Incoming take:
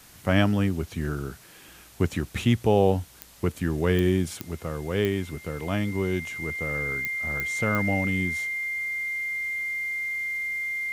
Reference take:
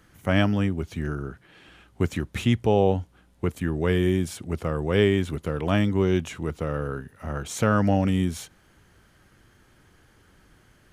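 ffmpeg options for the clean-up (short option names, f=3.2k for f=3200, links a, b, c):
-af "adeclick=t=4,bandreject=f=2.1k:w=30,afwtdn=0.0028,asetnsamples=n=441:p=0,asendcmd='4.42 volume volume 5dB',volume=0dB"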